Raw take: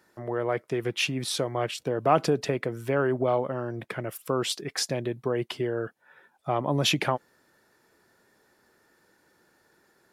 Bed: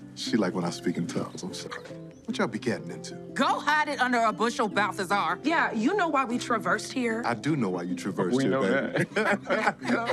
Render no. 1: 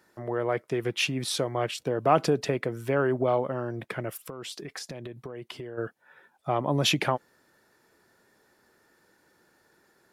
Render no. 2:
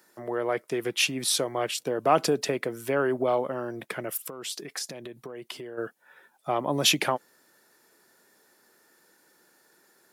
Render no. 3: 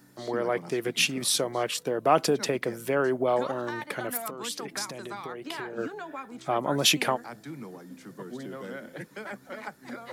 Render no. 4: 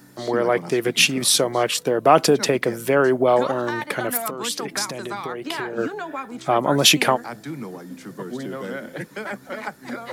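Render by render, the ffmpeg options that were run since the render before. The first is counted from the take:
-filter_complex "[0:a]asplit=3[s0][s1][s2];[s0]afade=t=out:st=4.21:d=0.02[s3];[s1]acompressor=threshold=0.02:ratio=16:attack=3.2:release=140:knee=1:detection=peak,afade=t=in:st=4.21:d=0.02,afade=t=out:st=5.77:d=0.02[s4];[s2]afade=t=in:st=5.77:d=0.02[s5];[s3][s4][s5]amix=inputs=3:normalize=0"
-af "highpass=190,highshelf=f=5500:g=11"
-filter_complex "[1:a]volume=0.2[s0];[0:a][s0]amix=inputs=2:normalize=0"
-af "volume=2.51,alimiter=limit=0.891:level=0:latency=1"

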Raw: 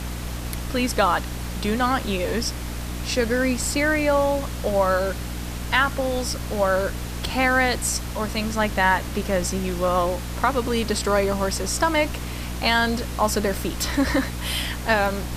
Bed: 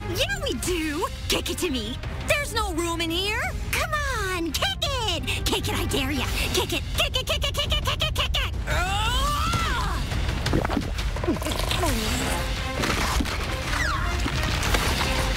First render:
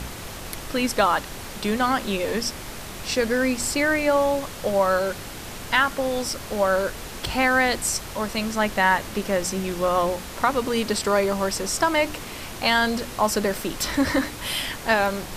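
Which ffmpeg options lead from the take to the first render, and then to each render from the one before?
-af "bandreject=f=60:t=h:w=4,bandreject=f=120:t=h:w=4,bandreject=f=180:t=h:w=4,bandreject=f=240:t=h:w=4,bandreject=f=300:t=h:w=4"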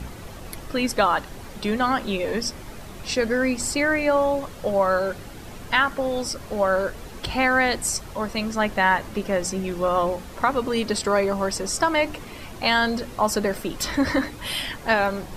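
-af "afftdn=nr=9:nf=-36"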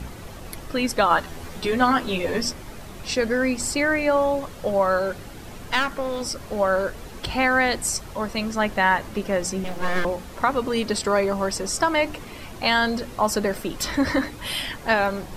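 -filter_complex "[0:a]asettb=1/sr,asplit=3[s0][s1][s2];[s0]atrim=end=1.094[s3];[s1]atrim=start=1.09:end=2.53,asetpts=PTS-STARTPTS,afade=t=in:d=0.004:c=qsin,afade=t=out:st=1.436:d=0.004:c=qsin,asplit=2[s4][s5];[s5]adelay=12,volume=0.794[s6];[s4][s6]amix=inputs=2:normalize=0,atrim=end_sample=63504[s7];[s2]atrim=start=2.526[s8];[s3][s7]acrossfade=d=0.004:c1=hsin:c2=qsin[s9];[s9][s8]acrossfade=d=0.004:c1=qsin:c2=hsin,asettb=1/sr,asplit=3[s10][s11][s12];[s10]atrim=end=5.594[s13];[s11]atrim=start=5.59:end=6.21,asetpts=PTS-STARTPTS,afade=t=in:d=0.004:c=qsin,afade=t=out:st=0.616:d=0.004:c=qsin,aeval=exprs='clip(val(0),-1,0.0376)':c=same[s14];[s12]atrim=start=6.206[s15];[s13][s14]acrossfade=d=0.004:c1=hsin:c2=qsin[s16];[s16][s15]acrossfade=d=0.004:c1=qsin:c2=hsin,asettb=1/sr,asplit=3[s17][s18][s19];[s17]atrim=end=9.644[s20];[s18]atrim=start=9.64:end=10.05,asetpts=PTS-STARTPTS,afade=t=in:d=0.004:c=qsin,afade=t=out:st=0.406:d=0.004:c=qsin,aeval=exprs='abs(val(0))':c=same[s21];[s19]atrim=start=10.046[s22];[s20][s21]acrossfade=d=0.004:c1=hsin:c2=qsin[s23];[s23][s22]acrossfade=d=0.004:c1=qsin:c2=hsin"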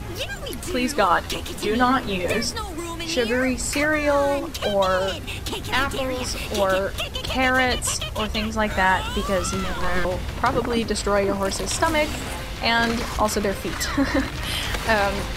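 -filter_complex "[1:a]volume=0.562[s0];[0:a][s0]amix=inputs=2:normalize=0"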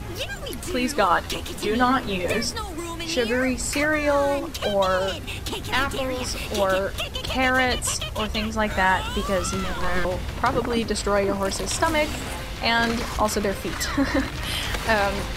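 -af "volume=0.891"

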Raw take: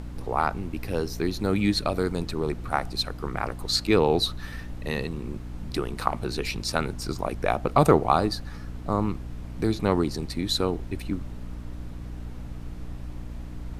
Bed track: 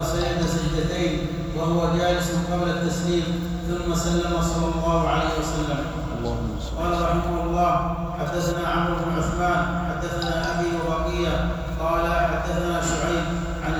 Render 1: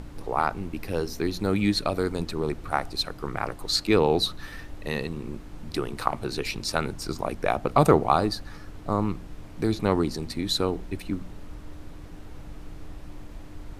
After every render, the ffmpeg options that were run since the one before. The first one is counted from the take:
-af "bandreject=f=60:t=h:w=4,bandreject=f=120:t=h:w=4,bandreject=f=180:t=h:w=4,bandreject=f=240:t=h:w=4"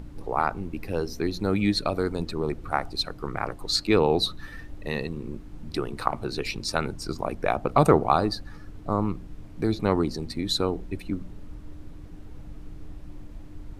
-af "afftdn=nr=7:nf=-42"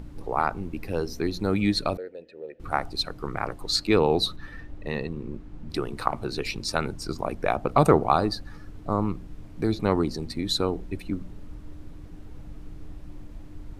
-filter_complex "[0:a]asettb=1/sr,asplit=3[s0][s1][s2];[s0]atrim=end=1.974[s3];[s1]atrim=start=1.97:end=2.6,asetpts=PTS-STARTPTS,afade=t=in:d=0.004:c=qsin,afade=t=out:st=0.626:d=0.004:c=qsin,asplit=3[s4][s5][s6];[s4]bandpass=f=530:t=q:w=8,volume=1[s7];[s5]bandpass=f=1840:t=q:w=8,volume=0.501[s8];[s6]bandpass=f=2480:t=q:w=8,volume=0.355[s9];[s7][s8][s9]amix=inputs=3:normalize=0[s10];[s2]atrim=start=2.596[s11];[s3][s10]acrossfade=d=0.004:c1=hsin:c2=qsin[s12];[s12][s11]acrossfade=d=0.004:c1=qsin:c2=hsin,asettb=1/sr,asplit=3[s13][s14][s15];[s13]atrim=end=4.364[s16];[s14]atrim=start=4.36:end=5.7,asetpts=PTS-STARTPTS,afade=t=in:d=0.004:c=qsin,afade=t=out:st=1.336:d=0.004:c=qsin,lowpass=f=2900:p=1[s17];[s15]atrim=start=5.696[s18];[s16][s17]acrossfade=d=0.004:c1=hsin:c2=qsin[s19];[s19][s18]acrossfade=d=0.004:c1=qsin:c2=hsin"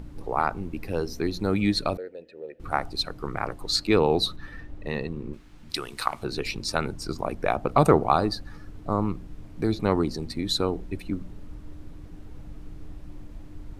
-filter_complex "[0:a]asettb=1/sr,asplit=3[s0][s1][s2];[s0]atrim=end=5.334[s3];[s1]atrim=start=5.33:end=6.23,asetpts=PTS-STARTPTS,afade=t=in:d=0.004:c=qsin,afade=t=out:st=0.896:d=0.004:c=qsin,tiltshelf=f=1200:g=-9.5[s4];[s2]atrim=start=6.226[s5];[s3][s4]acrossfade=d=0.004:c1=hsin:c2=qsin[s6];[s6][s5]acrossfade=d=0.004:c1=qsin:c2=hsin"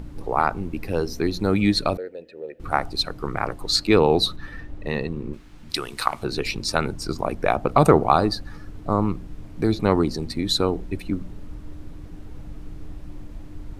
-af "volume=1.58,alimiter=limit=0.794:level=0:latency=1"

